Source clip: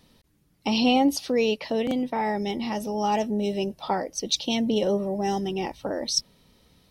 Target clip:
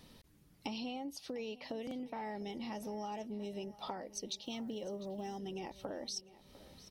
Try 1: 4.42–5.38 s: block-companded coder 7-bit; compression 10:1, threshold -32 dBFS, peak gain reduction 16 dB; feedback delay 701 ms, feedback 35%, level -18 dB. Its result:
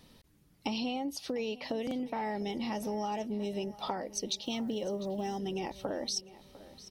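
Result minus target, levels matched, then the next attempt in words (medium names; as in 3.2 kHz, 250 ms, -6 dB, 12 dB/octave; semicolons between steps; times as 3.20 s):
compression: peak gain reduction -7 dB
4.42–5.38 s: block-companded coder 7-bit; compression 10:1, threshold -40 dBFS, peak gain reduction 23 dB; feedback delay 701 ms, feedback 35%, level -18 dB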